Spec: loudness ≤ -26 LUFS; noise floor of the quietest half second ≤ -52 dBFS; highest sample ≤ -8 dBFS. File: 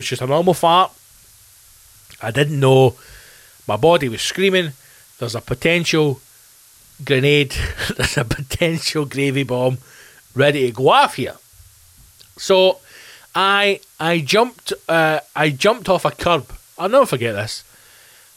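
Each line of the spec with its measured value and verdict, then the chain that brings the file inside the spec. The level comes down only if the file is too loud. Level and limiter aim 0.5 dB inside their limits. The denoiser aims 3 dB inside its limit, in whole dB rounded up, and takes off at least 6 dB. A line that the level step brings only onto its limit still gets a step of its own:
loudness -17.0 LUFS: fail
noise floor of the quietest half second -48 dBFS: fail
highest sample -3.0 dBFS: fail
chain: gain -9.5 dB

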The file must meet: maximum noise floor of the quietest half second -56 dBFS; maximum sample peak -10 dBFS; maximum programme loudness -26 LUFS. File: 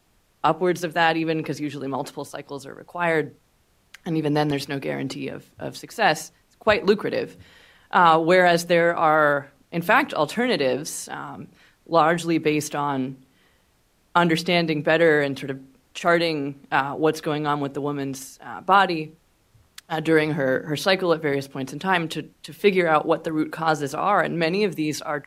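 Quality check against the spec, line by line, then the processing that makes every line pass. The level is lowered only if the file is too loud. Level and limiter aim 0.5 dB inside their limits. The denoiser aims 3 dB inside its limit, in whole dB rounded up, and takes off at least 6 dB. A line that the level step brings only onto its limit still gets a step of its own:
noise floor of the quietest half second -63 dBFS: OK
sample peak -4.5 dBFS: fail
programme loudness -22.0 LUFS: fail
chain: gain -4.5 dB; limiter -10.5 dBFS

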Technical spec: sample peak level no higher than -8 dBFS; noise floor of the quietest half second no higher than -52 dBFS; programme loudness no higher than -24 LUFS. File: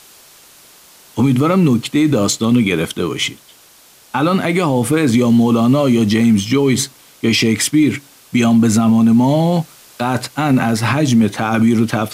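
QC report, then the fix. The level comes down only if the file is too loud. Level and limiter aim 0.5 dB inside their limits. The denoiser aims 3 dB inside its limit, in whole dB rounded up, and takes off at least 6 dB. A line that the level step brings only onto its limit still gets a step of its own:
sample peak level -5.0 dBFS: fail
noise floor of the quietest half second -46 dBFS: fail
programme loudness -14.5 LUFS: fail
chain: gain -10 dB

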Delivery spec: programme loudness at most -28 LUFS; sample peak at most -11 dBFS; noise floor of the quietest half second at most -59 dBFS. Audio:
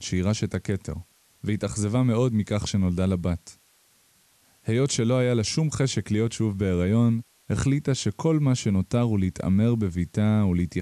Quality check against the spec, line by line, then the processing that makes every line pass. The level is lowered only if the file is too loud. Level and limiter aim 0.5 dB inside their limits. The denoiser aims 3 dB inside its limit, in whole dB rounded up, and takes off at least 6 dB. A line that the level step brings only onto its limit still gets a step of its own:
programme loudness -24.5 LUFS: fail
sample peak -13.5 dBFS: OK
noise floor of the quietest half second -62 dBFS: OK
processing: gain -4 dB

